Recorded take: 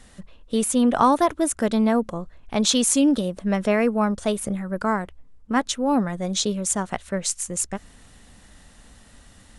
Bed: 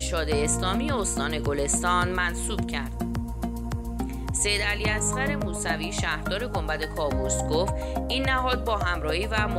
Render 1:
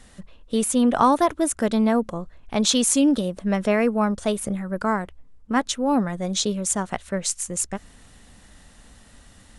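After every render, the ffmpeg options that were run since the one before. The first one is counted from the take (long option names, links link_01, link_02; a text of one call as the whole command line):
ffmpeg -i in.wav -af anull out.wav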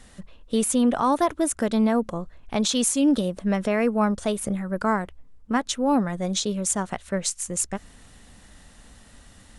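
ffmpeg -i in.wav -af "alimiter=limit=-12dB:level=0:latency=1:release=191" out.wav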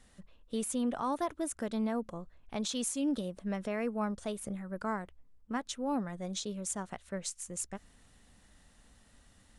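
ffmpeg -i in.wav -af "volume=-12dB" out.wav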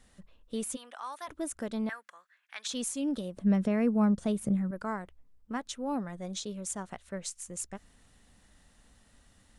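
ffmpeg -i in.wav -filter_complex "[0:a]asplit=3[link_01][link_02][link_03];[link_01]afade=type=out:start_time=0.75:duration=0.02[link_04];[link_02]highpass=1200,afade=type=in:start_time=0.75:duration=0.02,afade=type=out:start_time=1.27:duration=0.02[link_05];[link_03]afade=type=in:start_time=1.27:duration=0.02[link_06];[link_04][link_05][link_06]amix=inputs=3:normalize=0,asettb=1/sr,asplit=3[link_07][link_08][link_09];[link_07]atrim=end=1.894[link_10];[link_08]atrim=start=1.89:end=2.67,asetpts=PTS-STARTPTS,afade=type=in:duration=0.004:curve=qsin,afade=type=out:start_time=0.776:duration=0.004:curve=qsin,highpass=frequency=1700:width_type=q:width=3.6[link_11];[link_09]atrim=start=2.666[link_12];[link_10][link_11]acrossfade=duration=0.004:curve1=hsin:curve2=qsin[link_13];[link_13][link_12]acrossfade=duration=0.004:curve1=qsin:curve2=hsin,asettb=1/sr,asplit=3[link_14][link_15][link_16];[link_14]atrim=end=3.374[link_17];[link_15]atrim=start=3.37:end=4.71,asetpts=PTS-STARTPTS,afade=type=in:duration=0.004:curve=qsin,afade=type=out:start_time=1.336:duration=0.004:curve=qsin,equalizer=frequency=170:width_type=o:width=2.1:gain=12[link_18];[link_16]atrim=start=4.706[link_19];[link_17][link_18]acrossfade=duration=0.004:curve1=hsin:curve2=qsin[link_20];[link_20][link_19]acrossfade=duration=0.004:curve1=qsin:curve2=hsin" out.wav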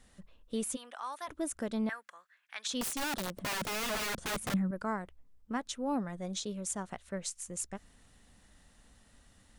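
ffmpeg -i in.wav -filter_complex "[0:a]asettb=1/sr,asplit=3[link_01][link_02][link_03];[link_01]atrim=end=2.814[link_04];[link_02]atrim=start=2.81:end=4.54,asetpts=PTS-STARTPTS,afade=type=in:duration=0.004:curve=qsin,afade=type=out:start_time=1.726:duration=0.004:curve=qsin,aeval=exprs='(mod(31.6*val(0)+1,2)-1)/31.6':channel_layout=same[link_05];[link_03]atrim=start=4.536[link_06];[link_04][link_05]acrossfade=duration=0.004:curve1=hsin:curve2=qsin[link_07];[link_07][link_06]acrossfade=duration=0.004:curve1=qsin:curve2=hsin" out.wav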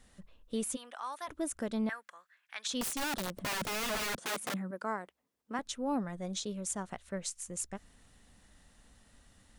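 ffmpeg -i in.wav -filter_complex "[0:a]asettb=1/sr,asplit=3[link_01][link_02][link_03];[link_01]atrim=end=4.164[link_04];[link_02]atrim=start=4.16:end=5.59,asetpts=PTS-STARTPTS,afade=type=in:duration=0.004:curve=qsin,afade=type=out:start_time=1.426:duration=0.004:curve=qsin,highpass=280[link_05];[link_03]atrim=start=5.586[link_06];[link_04][link_05]acrossfade=duration=0.004:curve1=hsin:curve2=qsin[link_07];[link_07][link_06]acrossfade=duration=0.004:curve1=qsin:curve2=hsin" out.wav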